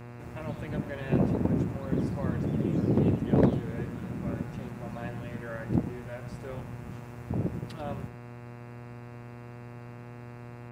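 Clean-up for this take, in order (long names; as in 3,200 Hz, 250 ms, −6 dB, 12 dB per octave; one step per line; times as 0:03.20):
clipped peaks rebuilt −14.5 dBFS
hum removal 120.1 Hz, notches 23
echo removal 94 ms −12.5 dB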